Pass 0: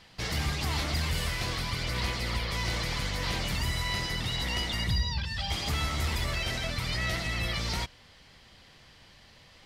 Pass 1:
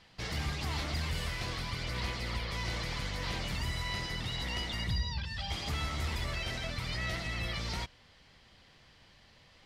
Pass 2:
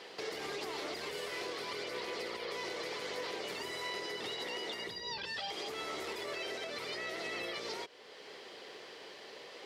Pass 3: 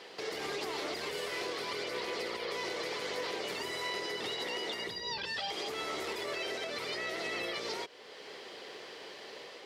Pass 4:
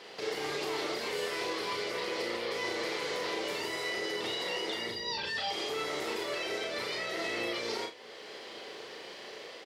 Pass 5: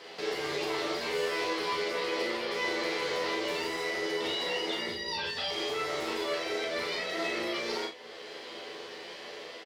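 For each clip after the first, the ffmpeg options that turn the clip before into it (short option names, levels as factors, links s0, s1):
-af "highshelf=f=9000:g=-8,volume=0.596"
-af "acompressor=threshold=0.0158:ratio=6,highpass=f=410:t=q:w=4.9,alimiter=level_in=6.31:limit=0.0631:level=0:latency=1:release=491,volume=0.158,volume=2.99"
-af "dynaudnorm=f=100:g=5:m=1.41"
-filter_complex "[0:a]asplit=2[s0][s1];[s1]adelay=34,volume=0.562[s2];[s0][s2]amix=inputs=2:normalize=0,asplit=2[s3][s4];[s4]aecho=0:1:43|55:0.376|0.266[s5];[s3][s5]amix=inputs=2:normalize=0"
-filter_complex "[0:a]acrossover=split=6200[s0][s1];[s0]asplit=2[s2][s3];[s3]adelay=12,volume=0.75[s4];[s2][s4]amix=inputs=2:normalize=0[s5];[s1]aeval=exprs='clip(val(0),-1,0.00168)':c=same[s6];[s5][s6]amix=inputs=2:normalize=0"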